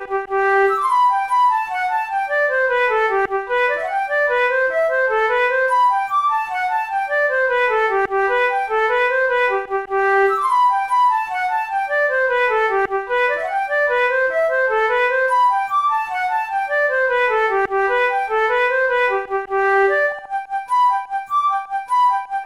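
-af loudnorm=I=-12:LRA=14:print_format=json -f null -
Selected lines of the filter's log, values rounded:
"input_i" : "-17.6",
"input_tp" : "-7.7",
"input_lra" : "1.2",
"input_thresh" : "-27.6",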